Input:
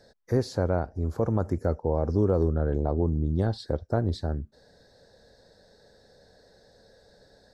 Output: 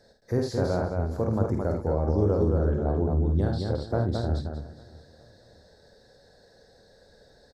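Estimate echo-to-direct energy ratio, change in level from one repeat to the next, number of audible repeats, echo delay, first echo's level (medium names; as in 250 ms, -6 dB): -0.5 dB, no regular repeats, 8, 50 ms, -5.5 dB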